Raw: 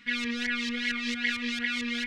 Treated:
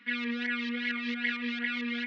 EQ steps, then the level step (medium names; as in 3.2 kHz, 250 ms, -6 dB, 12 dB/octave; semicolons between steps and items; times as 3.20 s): Gaussian low-pass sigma 2.4 samples; steep high-pass 200 Hz; 0.0 dB